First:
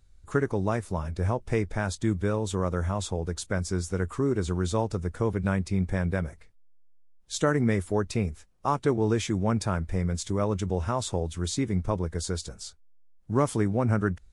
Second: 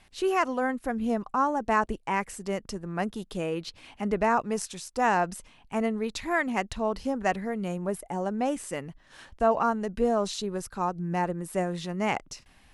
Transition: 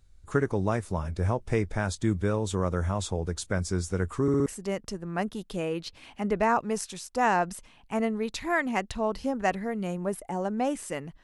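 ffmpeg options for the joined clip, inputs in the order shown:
ffmpeg -i cue0.wav -i cue1.wav -filter_complex "[0:a]apad=whole_dur=11.23,atrim=end=11.23,asplit=4[link_01][link_02][link_03][link_04];[link_01]atrim=end=4.282[link_05];[link_02]atrim=start=4.218:end=4.282[link_06];[link_03]atrim=start=4.218:end=4.282[link_07];[link_04]atrim=start=4.218:end=4.282[link_08];[1:a]atrim=start=2.268:end=9.04[link_09];[link_05][link_06]acrossfade=duration=0.004:curve1=hsin:curve2=hsin[link_10];[link_10][link_07]acrossfade=duration=0.004:curve1=hsin:curve2=hsin[link_11];[link_11][link_08]acrossfade=duration=0.004:curve1=hsin:curve2=hsin[link_12];[link_12][link_09]acrossfade=duration=0.004:curve1=hsin:curve2=hsin" out.wav

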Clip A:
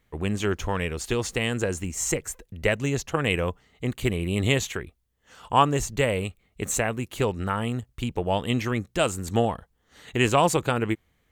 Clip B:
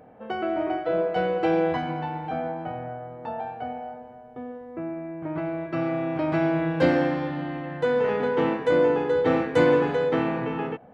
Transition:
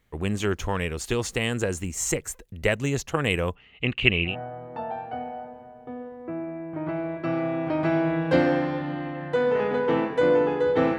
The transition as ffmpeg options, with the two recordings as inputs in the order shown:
ffmpeg -i cue0.wav -i cue1.wav -filter_complex "[0:a]asettb=1/sr,asplit=3[link_01][link_02][link_03];[link_01]atrim=end=3.554[link_04];[link_02]atrim=start=3.55:end=4.36,asetpts=PTS-STARTPTS,afade=type=in:duration=0.004:curve=qsin,afade=type=out:start_time=0.806:duration=0.004:curve=qsin,lowpass=frequency=2700:width_type=q:width=8.7[link_05];[link_03]atrim=start=4.356[link_06];[link_04][link_05]acrossfade=duration=0.004:curve1=hsin:curve2=qsin[link_07];[link_07][link_06]acrossfade=duration=0.004:curve1=qsin:curve2=hsin,apad=whole_dur=10.98,atrim=end=10.98,atrim=end=4.36,asetpts=PTS-STARTPTS[link_08];[1:a]atrim=start=2.73:end=9.47,asetpts=PTS-STARTPTS[link_09];[link_08][link_09]acrossfade=duration=0.12:curve1=tri:curve2=tri" out.wav

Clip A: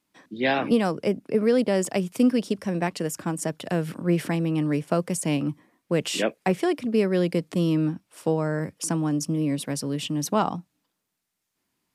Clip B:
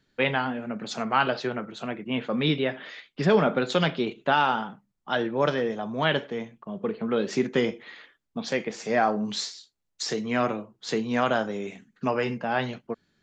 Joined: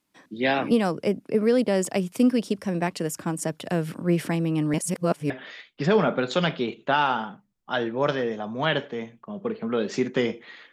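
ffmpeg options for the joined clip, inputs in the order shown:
ffmpeg -i cue0.wav -i cue1.wav -filter_complex "[0:a]apad=whole_dur=10.72,atrim=end=10.72,asplit=2[link_01][link_02];[link_01]atrim=end=4.742[link_03];[link_02]atrim=start=4.738:end=5.302,asetpts=PTS-STARTPTS,areverse[link_04];[1:a]atrim=start=2.688:end=8.11[link_05];[link_03][link_04]acrossfade=duration=0.004:curve1=hsin:curve2=hsin[link_06];[link_06][link_05]acrossfade=duration=0.004:curve1=hsin:curve2=hsin" out.wav

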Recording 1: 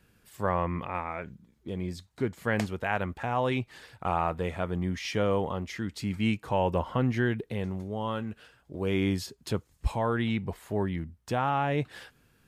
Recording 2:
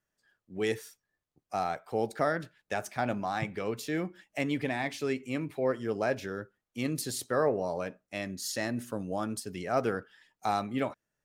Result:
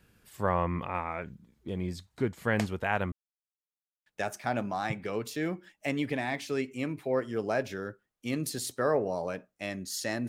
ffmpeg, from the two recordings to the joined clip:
ffmpeg -i cue0.wav -i cue1.wav -filter_complex "[0:a]apad=whole_dur=10.28,atrim=end=10.28,asplit=2[link_01][link_02];[link_01]atrim=end=3.12,asetpts=PTS-STARTPTS,afade=type=out:start_time=3.116:duration=0.004:curve=hsin[link_03];[link_02]atrim=start=3.12:end=4.06,asetpts=PTS-STARTPTS,volume=0[link_04];[1:a]atrim=start=2.58:end=8.8,asetpts=PTS-STARTPTS,afade=type=in:duration=0.004:curve=hsin[link_05];[link_03][link_04][link_05]concat=n=3:v=0:a=1" out.wav

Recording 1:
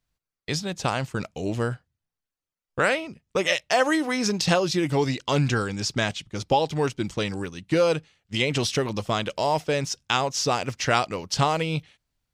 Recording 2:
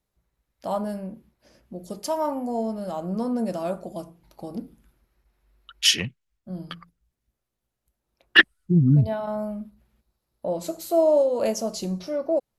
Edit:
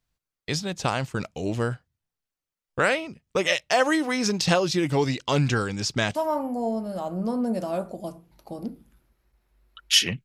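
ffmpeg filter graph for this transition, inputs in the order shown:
ffmpeg -i cue0.wav -i cue1.wav -filter_complex "[0:a]apad=whole_dur=10.24,atrim=end=10.24,atrim=end=6.152[link_01];[1:a]atrim=start=2.068:end=6.16[link_02];[link_01][link_02]acrossfade=duration=0.004:curve1=hsin:curve2=hsin" out.wav

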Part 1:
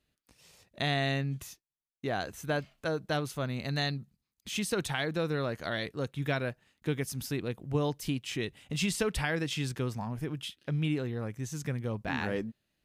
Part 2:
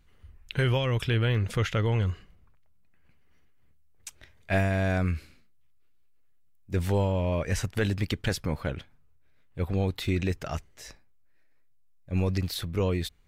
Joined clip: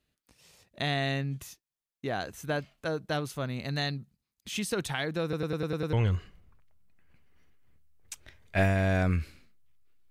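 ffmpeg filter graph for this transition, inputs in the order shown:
ffmpeg -i cue0.wav -i cue1.wav -filter_complex "[0:a]apad=whole_dur=10.1,atrim=end=10.1,asplit=7[link_01][link_02][link_03][link_04][link_05][link_06][link_07];[link_01]atrim=end=5.332[link_08];[link_02]atrim=start=5.228:end=5.332[link_09];[link_03]atrim=start=5.228:end=5.332[link_10];[link_04]atrim=start=5.228:end=5.332[link_11];[link_05]atrim=start=5.228:end=5.332[link_12];[link_06]atrim=start=5.228:end=5.332[link_13];[link_07]atrim=start=5.228:end=5.332[link_14];[1:a]atrim=start=1.878:end=6.05[link_15];[link_08][link_09]acrossfade=duration=0.004:curve1=hsin:curve2=hsin[link_16];[link_16][link_10]acrossfade=duration=0.004:curve1=hsin:curve2=hsin[link_17];[link_17][link_11]acrossfade=duration=0.004:curve1=hsin:curve2=hsin[link_18];[link_18][link_12]acrossfade=duration=0.004:curve1=hsin:curve2=hsin[link_19];[link_19][link_13]acrossfade=duration=0.004:curve1=hsin:curve2=hsin[link_20];[link_20][link_14]acrossfade=duration=0.004:curve1=hsin:curve2=hsin[link_21];[link_21][link_15]acrossfade=duration=0.004:curve1=hsin:curve2=hsin" out.wav

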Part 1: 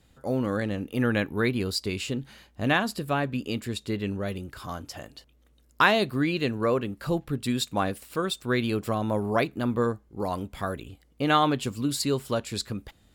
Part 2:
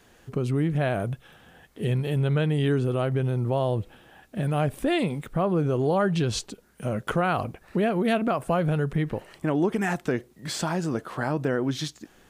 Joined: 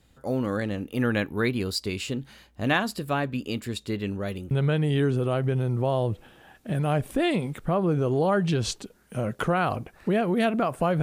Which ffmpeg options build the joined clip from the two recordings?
ffmpeg -i cue0.wav -i cue1.wav -filter_complex "[0:a]apad=whole_dur=11.02,atrim=end=11.02,atrim=end=4.512[link_01];[1:a]atrim=start=2.188:end=8.7[link_02];[link_01][link_02]acrossfade=duration=0.004:curve1=hsin:curve2=hsin" out.wav

